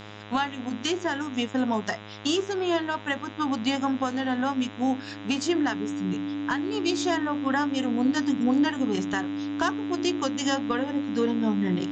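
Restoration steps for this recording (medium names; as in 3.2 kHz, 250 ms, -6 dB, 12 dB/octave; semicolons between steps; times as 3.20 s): de-hum 104.5 Hz, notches 38; band-stop 290 Hz, Q 30; expander -31 dBFS, range -21 dB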